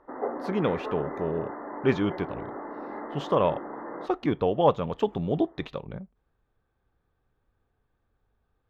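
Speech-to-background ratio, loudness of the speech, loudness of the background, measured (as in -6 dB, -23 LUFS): 8.5 dB, -28.5 LUFS, -37.0 LUFS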